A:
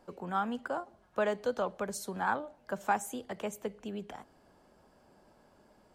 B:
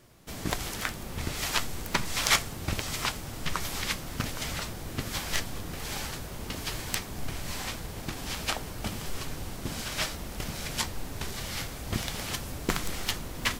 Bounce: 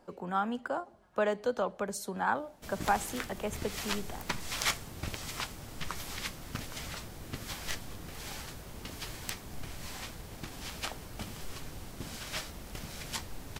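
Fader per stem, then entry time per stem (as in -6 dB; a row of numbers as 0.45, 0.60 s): +1.0, -7.0 dB; 0.00, 2.35 s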